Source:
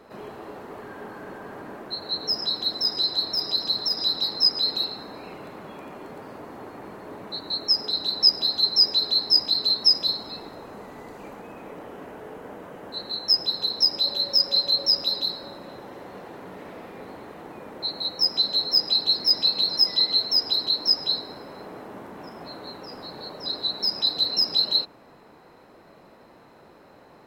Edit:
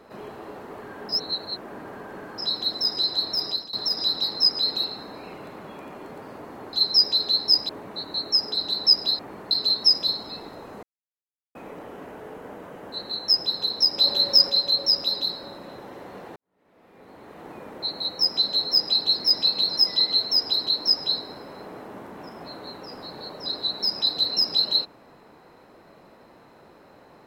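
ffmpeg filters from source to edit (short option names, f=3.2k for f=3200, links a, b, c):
-filter_complex "[0:a]asplit=13[a][b][c][d][e][f][g][h][i][j][k][l][m];[a]atrim=end=1.092[n];[b]atrim=start=1.088:end=2.382,asetpts=PTS-STARTPTS,areverse[o];[c]atrim=start=2.378:end=3.73,asetpts=PTS-STARTPTS,afade=t=out:st=1.092:d=0.26:silence=0.0841395[p];[d]atrim=start=3.73:end=6.732,asetpts=PTS-STARTPTS,afade=t=in:d=0.004:c=hsin:silence=0.0841395[q];[e]atrim=start=8.548:end=9.512[r];[f]atrim=start=7.048:end=8.552[s];[g]atrim=start=6.728:end=7.052[t];[h]atrim=start=9.508:end=10.83,asetpts=PTS-STARTPTS,afade=t=out:st=1.318:d=0.004:c=hsin[u];[i]atrim=start=10.83:end=11.55,asetpts=PTS-STARTPTS,volume=0[v];[j]atrim=start=11.55:end=13.982,asetpts=PTS-STARTPTS,afade=t=in:d=0.004:c=hsin[w];[k]atrim=start=13.978:end=14.502,asetpts=PTS-STARTPTS,volume=4dB[x];[l]atrim=start=14.498:end=16.36,asetpts=PTS-STARTPTS,afade=t=out:st=1.858:d=0.004:c=hsin[y];[m]atrim=start=16.36,asetpts=PTS-STARTPTS,afade=t=in:d=1.14:c=qua[z];[n][o]acrossfade=d=0.004:c1=hsin:c2=hsin[aa];[p][q]concat=n=2:v=0:a=1[ab];[aa][ab]acrossfade=d=0.004:c1=hsin:c2=hsin[ac];[ac][r]acrossfade=d=0.004:c1=hsin:c2=hsin[ad];[ad][s]acrossfade=d=0.004:c1=hsin:c2=hsin[ae];[ae][t]acrossfade=d=0.004:c1=hsin:c2=hsin[af];[u][v][w]concat=n=3:v=0:a=1[ag];[af][ag]acrossfade=d=0.004:c1=hsin:c2=hsin[ah];[ah][x]acrossfade=d=0.004:c1=hsin:c2=hsin[ai];[y][z]concat=n=2:v=0:a=1[aj];[ai][aj]acrossfade=d=0.004:c1=hsin:c2=hsin"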